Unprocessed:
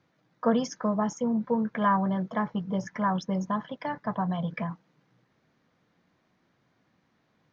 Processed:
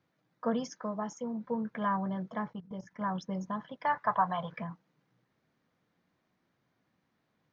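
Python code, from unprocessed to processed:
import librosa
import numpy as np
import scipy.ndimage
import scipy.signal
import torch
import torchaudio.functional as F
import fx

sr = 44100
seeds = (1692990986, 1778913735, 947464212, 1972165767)

y = fx.low_shelf(x, sr, hz=140.0, db=-11.0, at=(0.71, 1.45))
y = fx.level_steps(y, sr, step_db=16, at=(2.53, 3.01))
y = fx.curve_eq(y, sr, hz=(110.0, 240.0, 1100.0, 4800.0), db=(0, -7, 15, 3), at=(3.85, 4.57))
y = y * 10.0 ** (-7.0 / 20.0)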